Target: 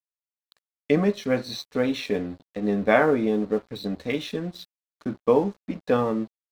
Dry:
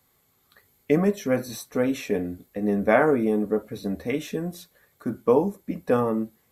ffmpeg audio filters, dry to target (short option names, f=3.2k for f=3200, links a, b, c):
-af "lowpass=f=4.1k:t=q:w=3.4,aeval=exprs='sgn(val(0))*max(abs(val(0))-0.00562,0)':c=same"